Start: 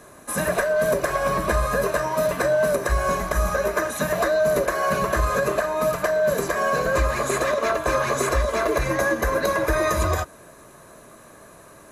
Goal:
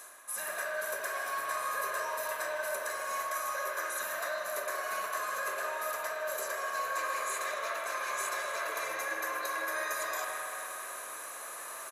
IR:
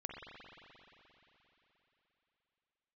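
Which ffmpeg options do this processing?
-filter_complex "[0:a]highpass=910,highshelf=frequency=7200:gain=10.5,areverse,acompressor=threshold=-42dB:ratio=4,areverse,aecho=1:1:156:0.188[link_01];[1:a]atrim=start_sample=2205[link_02];[link_01][link_02]afir=irnorm=-1:irlink=0,volume=8dB"

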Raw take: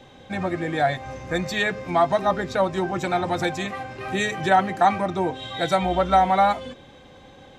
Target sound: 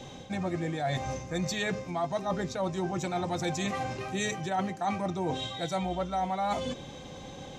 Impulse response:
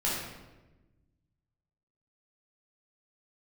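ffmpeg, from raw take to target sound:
-af "equalizer=frequency=160:width_type=o:width=0.67:gain=5,equalizer=frequency=1600:width_type=o:width=0.67:gain=-5,equalizer=frequency=6300:width_type=o:width=0.67:gain=9,areverse,acompressor=threshold=-32dB:ratio=6,areverse,volume=3dB"

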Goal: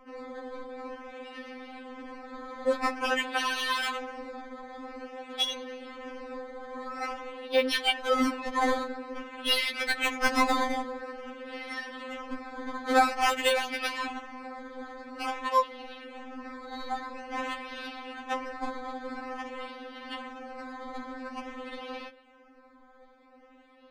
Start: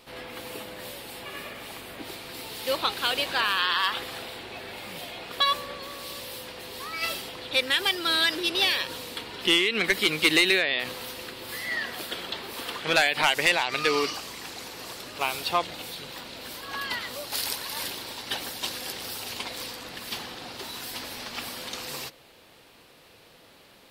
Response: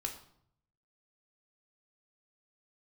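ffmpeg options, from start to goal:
-filter_complex "[0:a]acrusher=samples=11:mix=1:aa=0.000001:lfo=1:lforange=11:lforate=0.49,adynamicsmooth=sensitivity=1:basefreq=2300,asplit=2[link_01][link_02];[1:a]atrim=start_sample=2205,afade=type=out:start_time=0.21:duration=0.01,atrim=end_sample=9702,atrim=end_sample=4410[link_03];[link_02][link_03]afir=irnorm=-1:irlink=0,volume=-17.5dB[link_04];[link_01][link_04]amix=inputs=2:normalize=0,afftfilt=real='re*3.46*eq(mod(b,12),0)':imag='im*3.46*eq(mod(b,12),0)':win_size=2048:overlap=0.75"

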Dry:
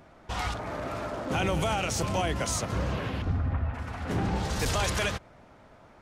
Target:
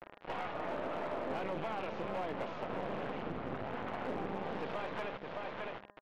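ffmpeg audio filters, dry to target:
ffmpeg -i in.wav -filter_complex "[0:a]asplit=2[link_01][link_02];[link_02]asetrate=66075,aresample=44100,atempo=0.66742,volume=-13dB[link_03];[link_01][link_03]amix=inputs=2:normalize=0,highpass=frequency=140:width=0.5412,highpass=frequency=140:width=1.3066,aecho=1:1:614:0.211,adynamicequalizer=threshold=0.00355:dfrequency=210:dqfactor=6:tfrequency=210:tqfactor=6:attack=5:release=100:ratio=0.375:range=2.5:mode=boostabove:tftype=bell,acompressor=threshold=-40dB:ratio=5,aresample=16000,acrusher=bits=5:dc=4:mix=0:aa=0.000001,aresample=44100,lowpass=frequency=3000:width=0.5412,lowpass=frequency=3000:width=1.3066,equalizer=frequency=560:width=0.56:gain=10,bandreject=frequency=203.6:width_type=h:width=4,bandreject=frequency=407.2:width_type=h:width=4,bandreject=frequency=610.8:width_type=h:width=4,bandreject=frequency=814.4:width_type=h:width=4,bandreject=frequency=1018:width_type=h:width=4,bandreject=frequency=1221.6:width_type=h:width=4,bandreject=frequency=1425.2:width_type=h:width=4,bandreject=frequency=1628.8:width_type=h:width=4,bandreject=frequency=1832.4:width_type=h:width=4,volume=31.5dB,asoftclip=hard,volume=-31.5dB,volume=1.5dB" out.wav

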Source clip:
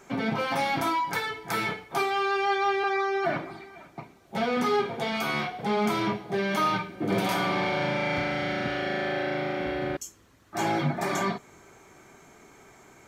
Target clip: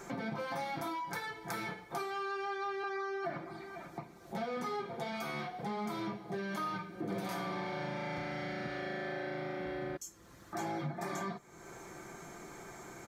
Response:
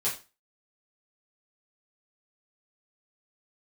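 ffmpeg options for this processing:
-af "equalizer=frequency=2800:width=2.4:gain=-6.5,aecho=1:1:5.8:0.38,acompressor=threshold=-49dB:ratio=2.5,volume=4.5dB"

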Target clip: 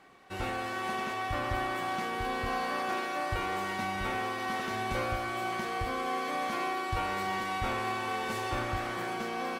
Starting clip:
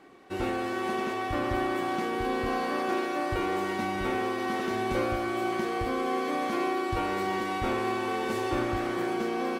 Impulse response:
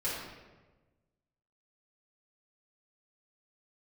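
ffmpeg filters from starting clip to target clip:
-af "equalizer=frequency=330:width_type=o:width=1.1:gain=-11"

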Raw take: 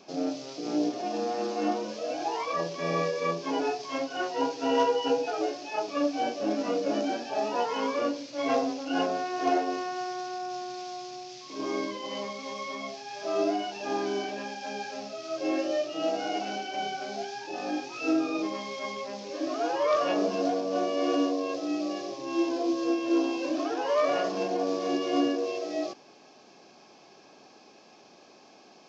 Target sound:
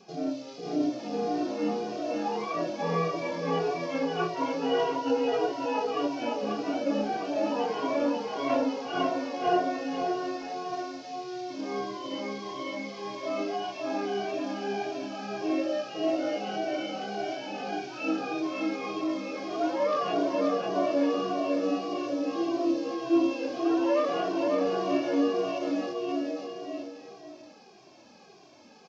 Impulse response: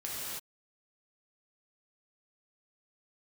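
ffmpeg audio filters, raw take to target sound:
-filter_complex "[0:a]acrossover=split=4800[link_01][link_02];[link_02]acompressor=threshold=-55dB:ratio=4:attack=1:release=60[link_03];[link_01][link_03]amix=inputs=2:normalize=0,lowshelf=frequency=200:gain=7,aecho=1:1:540|945|1249|1477|1647:0.631|0.398|0.251|0.158|0.1,asplit=2[link_04][link_05];[link_05]adelay=2,afreqshift=-1.7[link_06];[link_04][link_06]amix=inputs=2:normalize=1"

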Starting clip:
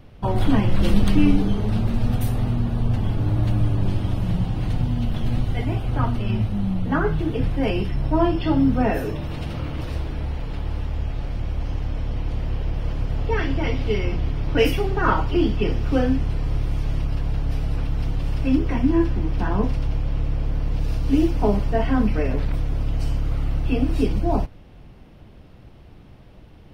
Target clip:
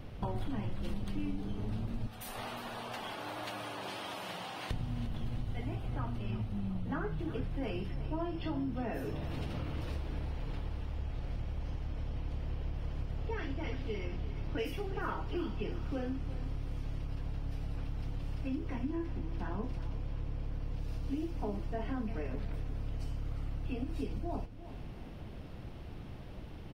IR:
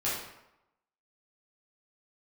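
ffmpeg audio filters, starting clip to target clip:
-filter_complex "[0:a]asettb=1/sr,asplit=3[link_01][link_02][link_03];[link_01]atrim=end=2.074[link_04];[link_02]atrim=start=2.07:end=4.71,asetpts=PTS-STARTPTS,afade=type=in:duration=0.004:curve=qsin,afade=type=out:start_time=2.636:duration=0.004:curve=qsin,highpass=790[link_05];[link_03]atrim=start=4.706[link_06];[link_04][link_05]acrossfade=duration=0.004:curve1=hsin:curve2=qsin[link_07];[link_07][link_06]acrossfade=duration=0.004:curve1=qsin:curve2=hsin,acompressor=threshold=-35dB:ratio=5,aecho=1:1:353|706|1059|1412:0.2|0.0918|0.0422|0.0194"

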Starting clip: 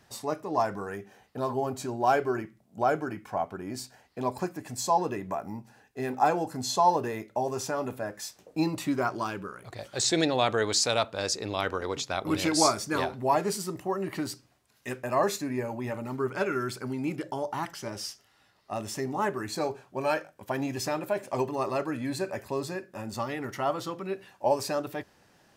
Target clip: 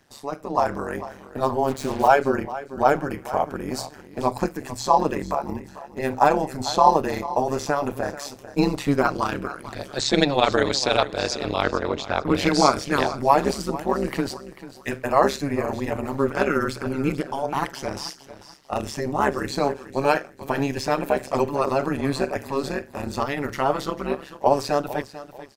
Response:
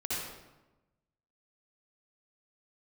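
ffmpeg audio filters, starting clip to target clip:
-filter_complex "[0:a]asettb=1/sr,asplit=3[link_01][link_02][link_03];[link_01]atrim=end=11.624[link_04];[link_02]atrim=start=11.62:end=12.35,asetpts=PTS-STARTPTS,afade=type=in:duration=0.004:curve=qsin,afade=type=out:start_time=0.726:duration=0.004:curve=qsin,aemphasis=mode=reproduction:type=75fm[link_05];[link_03]atrim=start=12.346[link_06];[link_04][link_05]acrossfade=duration=0.004:curve1=hsin:curve2=qsin[link_07];[link_07][link_06]acrossfade=duration=0.004:curve1=qsin:curve2=hsin,acrossover=split=5100[link_08][link_09];[link_09]acompressor=threshold=-46dB:ratio=4:attack=1:release=60[link_10];[link_08][link_10]amix=inputs=2:normalize=0,asettb=1/sr,asplit=3[link_11][link_12][link_13];[link_11]atrim=end=3.104[link_14];[link_12]atrim=start=3.1:end=3.82,asetpts=PTS-STARTPTS,afade=type=in:duration=0.004:curve=qsin,afade=type=out:start_time=0.716:duration=0.004:curve=qsin,highshelf=frequency=4500:gain=6.5[link_15];[link_13]atrim=start=3.816[link_16];[link_14][link_15]acrossfade=duration=0.004:curve1=hsin:curve2=qsin[link_17];[link_17][link_16]acrossfade=duration=0.004:curve1=qsin:curve2=hsin,dynaudnorm=framelen=150:gausssize=7:maxgain=7.5dB,aecho=1:1:443|886|1329:0.178|0.0516|0.015,tremolo=f=140:d=0.947,asplit=3[link_18][link_19][link_20];[link_18]afade=type=out:start_time=1.67:duration=0.02[link_21];[link_19]acrusher=bits=5:mix=0:aa=0.5,afade=type=in:start_time=1.67:duration=0.02,afade=type=out:start_time=2.07:duration=0.02[link_22];[link_20]afade=type=in:start_time=2.07:duration=0.02[link_23];[link_21][link_22][link_23]amix=inputs=3:normalize=0,bandreject=frequency=60:width_type=h:width=6,bandreject=frequency=120:width_type=h:width=6,volume=3.5dB"

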